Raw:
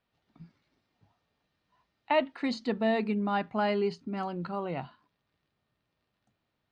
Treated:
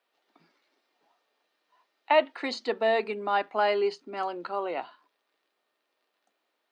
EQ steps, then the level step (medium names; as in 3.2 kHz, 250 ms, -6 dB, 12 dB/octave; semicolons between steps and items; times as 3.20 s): high-pass 350 Hz 24 dB/octave; +4.5 dB